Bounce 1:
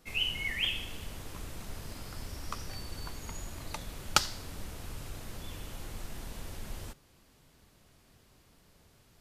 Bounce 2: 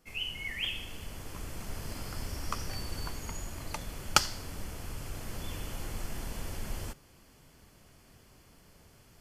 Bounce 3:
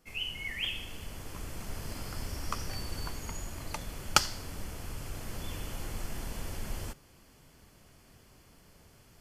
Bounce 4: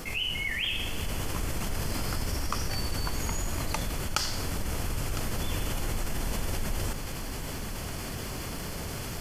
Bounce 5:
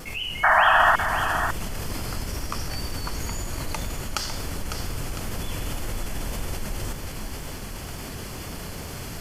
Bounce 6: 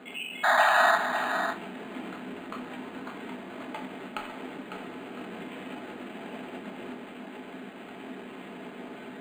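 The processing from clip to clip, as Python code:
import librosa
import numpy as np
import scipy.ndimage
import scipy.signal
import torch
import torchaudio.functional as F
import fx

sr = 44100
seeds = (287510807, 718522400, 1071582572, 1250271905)

y1 = fx.rider(x, sr, range_db=5, speed_s=2.0)
y1 = fx.notch(y1, sr, hz=3800.0, q=7.0)
y1 = y1 * 10.0 ** (-1.0 / 20.0)
y2 = y1
y3 = fx.rider(y2, sr, range_db=3, speed_s=0.5)
y3 = y3 + 10.0 ** (-23.0 / 20.0) * np.pad(y3, (int(1006 * sr / 1000.0), 0))[:len(y3)]
y3 = fx.env_flatten(y3, sr, amount_pct=70)
y3 = y3 * 10.0 ** (-4.0 / 20.0)
y4 = fx.wow_flutter(y3, sr, seeds[0], rate_hz=2.1, depth_cents=28.0)
y4 = fx.spec_paint(y4, sr, seeds[1], shape='noise', start_s=0.43, length_s=0.53, low_hz=610.0, high_hz=1900.0, level_db=-17.0)
y4 = y4 + 10.0 ** (-8.0 / 20.0) * np.pad(y4, (int(552 * sr / 1000.0), 0))[:len(y4)]
y5 = fx.cabinet(y4, sr, low_hz=240.0, low_slope=24, high_hz=3500.0, hz=(240.0, 520.0, 1100.0), db=(3, -5, -7))
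y5 = fx.room_shoebox(y5, sr, seeds[2], volume_m3=190.0, walls='furnished', distance_m=1.4)
y5 = np.interp(np.arange(len(y5)), np.arange(len(y5))[::8], y5[::8])
y5 = y5 * 10.0 ** (-3.5 / 20.0)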